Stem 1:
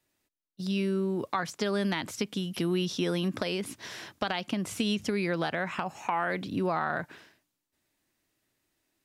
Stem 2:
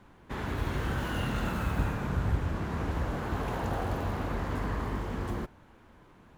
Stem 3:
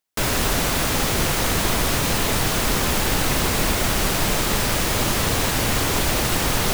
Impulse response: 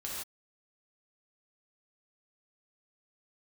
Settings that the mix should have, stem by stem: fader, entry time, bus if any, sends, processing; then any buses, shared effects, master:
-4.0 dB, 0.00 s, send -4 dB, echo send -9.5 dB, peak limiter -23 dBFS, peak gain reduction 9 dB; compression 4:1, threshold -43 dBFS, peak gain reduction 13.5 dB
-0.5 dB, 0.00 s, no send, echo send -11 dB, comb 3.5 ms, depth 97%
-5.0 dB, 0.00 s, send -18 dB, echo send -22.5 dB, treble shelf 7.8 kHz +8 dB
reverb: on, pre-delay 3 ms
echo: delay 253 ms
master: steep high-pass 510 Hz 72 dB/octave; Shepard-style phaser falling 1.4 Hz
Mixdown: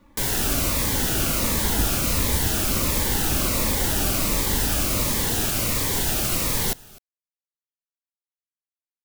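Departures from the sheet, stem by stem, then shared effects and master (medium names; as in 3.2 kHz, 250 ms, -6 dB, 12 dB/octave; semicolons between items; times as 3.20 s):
stem 1: muted; master: missing steep high-pass 510 Hz 72 dB/octave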